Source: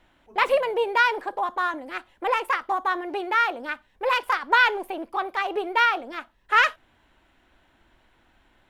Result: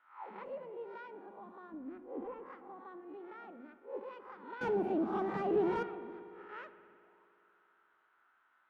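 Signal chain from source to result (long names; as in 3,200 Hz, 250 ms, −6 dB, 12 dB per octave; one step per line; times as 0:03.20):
peak hold with a rise ahead of every peak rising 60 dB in 0.45 s
0:01.72–0:02.46: RIAA equalisation playback
mains-hum notches 60/120/180/240 Hz
0:04.61–0:05.83: leveller curve on the samples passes 5
envelope filter 200–1,400 Hz, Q 6.1, down, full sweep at −26 dBFS
spring reverb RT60 2.8 s, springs 58 ms, chirp 70 ms, DRR 11.5 dB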